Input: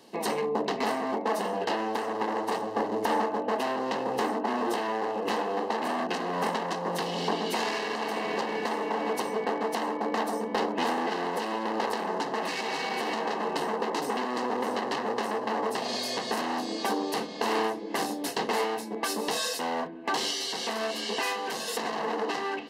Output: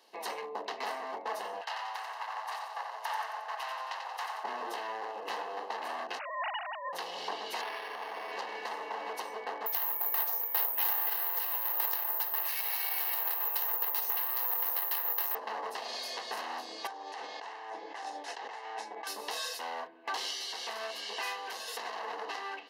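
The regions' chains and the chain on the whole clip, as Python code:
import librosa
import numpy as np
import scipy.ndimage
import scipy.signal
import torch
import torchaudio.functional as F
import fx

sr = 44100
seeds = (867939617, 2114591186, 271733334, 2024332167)

y = fx.chain(x, sr, fx.highpass(hz=760.0, slope=24),
    fx.echo_feedback(ms=90, feedback_pct=56, wet_db=-5.5), at=(1.61, 4.44))
y = fx.chain(y, sr, fx.sine_speech(),
    fx.tilt_eq(slope=4.5), at=(6.19, 6.93))
y = fx.chain(y, sr, fx.peak_eq(hz=150.0, db=-10.0, octaves=0.74),
    fx.resample_linear(factor=6), at=(7.61, 8.32))
y = fx.chain(y, sr, fx.resample_bad(factor=3, down='none', up='zero_stuff'),
    fx.highpass(hz=1100.0, slope=6), at=(9.66, 15.35))
y = fx.chain(y, sr, fx.over_compress(threshold_db=-35.0, ratio=-1.0),
    fx.cabinet(low_hz=280.0, low_slope=12, high_hz=7800.0, hz=(810.0, 1800.0, 4500.0), db=(7, 5, -3)), at=(16.87, 19.07))
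y = scipy.signal.sosfilt(scipy.signal.butter(2, 660.0, 'highpass', fs=sr, output='sos'), y)
y = fx.peak_eq(y, sr, hz=8000.0, db=-7.0, octaves=0.35)
y = y * librosa.db_to_amplitude(-5.5)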